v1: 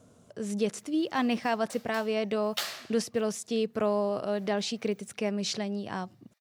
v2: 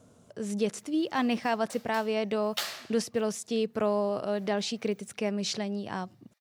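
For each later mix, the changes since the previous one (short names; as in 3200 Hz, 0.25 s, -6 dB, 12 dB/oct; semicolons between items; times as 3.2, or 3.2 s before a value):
master: remove notch 880 Hz, Q 28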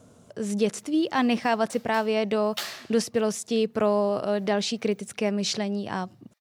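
speech +4.5 dB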